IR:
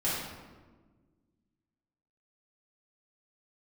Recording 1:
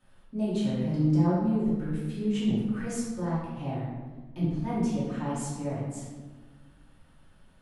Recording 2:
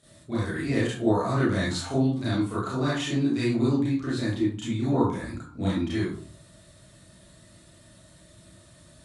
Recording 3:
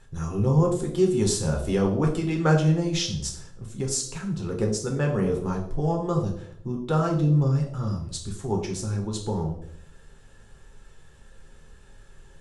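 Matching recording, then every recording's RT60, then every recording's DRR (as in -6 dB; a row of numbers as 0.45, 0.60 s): 1; 1.4, 0.50, 0.70 s; -10.0, -10.5, 0.0 dB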